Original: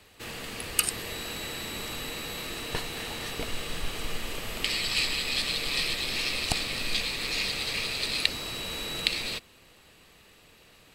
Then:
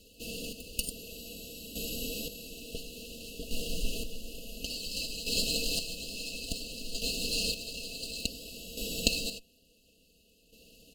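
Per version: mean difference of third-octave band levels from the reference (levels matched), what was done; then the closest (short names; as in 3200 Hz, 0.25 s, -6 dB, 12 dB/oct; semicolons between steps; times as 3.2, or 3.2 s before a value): 10.5 dB: minimum comb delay 0.43 ms; FFT band-reject 680–2600 Hz; comb 4.2 ms; chopper 0.57 Hz, depth 60%, duty 30%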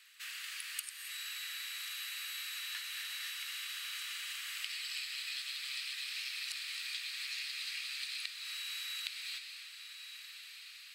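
16.5 dB: steep high-pass 1400 Hz 36 dB/oct; compressor, threshold -37 dBFS, peak gain reduction 18 dB; diffused feedback echo 1.335 s, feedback 60%, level -10 dB; non-linear reverb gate 0.3 s rising, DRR 8 dB; gain -2.5 dB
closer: first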